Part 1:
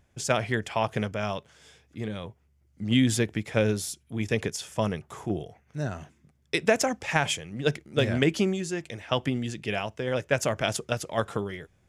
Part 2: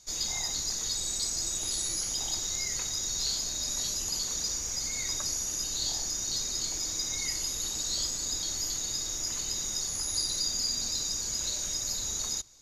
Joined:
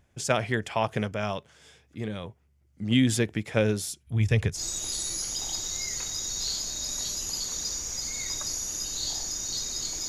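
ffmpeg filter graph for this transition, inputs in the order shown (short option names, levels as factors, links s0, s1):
-filter_complex "[0:a]asplit=3[s0][s1][s2];[s0]afade=t=out:st=4.06:d=0.02[s3];[s1]asubboost=boost=10.5:cutoff=91,afade=t=in:st=4.06:d=0.02,afade=t=out:st=4.62:d=0.02[s4];[s2]afade=t=in:st=4.62:d=0.02[s5];[s3][s4][s5]amix=inputs=3:normalize=0,apad=whole_dur=10.08,atrim=end=10.08,atrim=end=4.62,asetpts=PTS-STARTPTS[s6];[1:a]atrim=start=1.31:end=6.87,asetpts=PTS-STARTPTS[s7];[s6][s7]acrossfade=d=0.1:c1=tri:c2=tri"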